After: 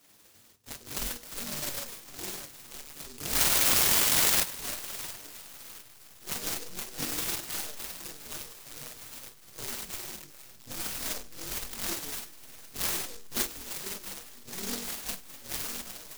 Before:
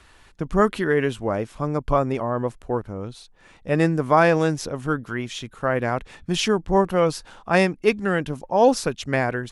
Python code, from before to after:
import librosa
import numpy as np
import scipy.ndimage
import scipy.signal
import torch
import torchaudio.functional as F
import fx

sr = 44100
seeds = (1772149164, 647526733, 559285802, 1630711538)

p1 = fx.hum_notches(x, sr, base_hz=50, count=10)
p2 = fx.spec_gate(p1, sr, threshold_db=-15, keep='weak')
p3 = fx.dynamic_eq(p2, sr, hz=1600.0, q=0.91, threshold_db=-34.0, ratio=4.0, max_db=-5)
p4 = fx.spec_paint(p3, sr, seeds[0], shape='noise', start_s=1.96, length_s=0.65, low_hz=840.0, high_hz=3400.0, level_db=-25.0)
p5 = p4 + fx.echo_wet_highpass(p4, sr, ms=405, feedback_pct=41, hz=2400.0, wet_db=-10, dry=0)
p6 = fx.env_flanger(p5, sr, rest_ms=10.3, full_db=-19.0)
p7 = fx.comb_fb(p6, sr, f0_hz=120.0, decay_s=0.25, harmonics='all', damping=0.0, mix_pct=60)
p8 = fx.backlash(p7, sr, play_db=-28.0)
p9 = p7 + F.gain(torch.from_numpy(p8), -6.0).numpy()
p10 = fx.stretch_grains(p9, sr, factor=1.7, grain_ms=102.0)
p11 = fx.over_compress(p10, sr, threshold_db=-31.0, ratio=-1.0)
p12 = fx.noise_mod_delay(p11, sr, seeds[1], noise_hz=5600.0, depth_ms=0.38)
y = F.gain(torch.from_numpy(p12), 8.5).numpy()